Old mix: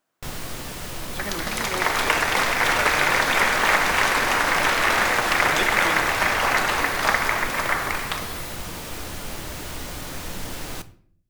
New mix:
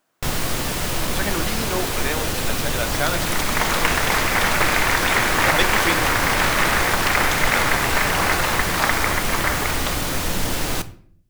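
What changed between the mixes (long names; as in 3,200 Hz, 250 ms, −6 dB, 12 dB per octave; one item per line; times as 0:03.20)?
speech +6.5 dB
first sound +9.5 dB
second sound: entry +1.75 s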